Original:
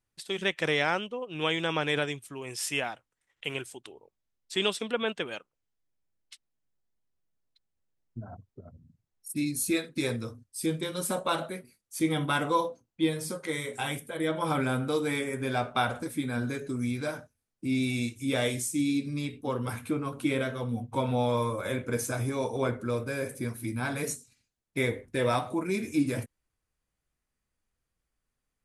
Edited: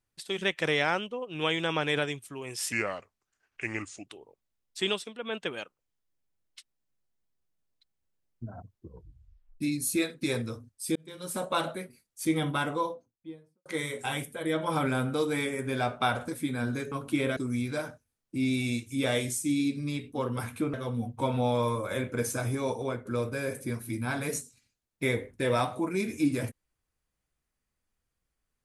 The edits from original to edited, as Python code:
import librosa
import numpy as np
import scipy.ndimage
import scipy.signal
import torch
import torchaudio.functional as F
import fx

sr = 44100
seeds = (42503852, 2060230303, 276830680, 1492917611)

y = fx.studio_fade_out(x, sr, start_s=12.03, length_s=1.37)
y = fx.edit(y, sr, fx.speed_span(start_s=2.72, length_s=1.09, speed=0.81),
    fx.fade_down_up(start_s=4.56, length_s=0.67, db=-12.0, fade_s=0.33),
    fx.tape_stop(start_s=8.46, length_s=0.89),
    fx.fade_in_span(start_s=10.7, length_s=0.58),
    fx.move(start_s=20.03, length_s=0.45, to_s=16.66),
    fx.fade_out_to(start_s=22.45, length_s=0.35, floor_db=-10.0), tone=tone)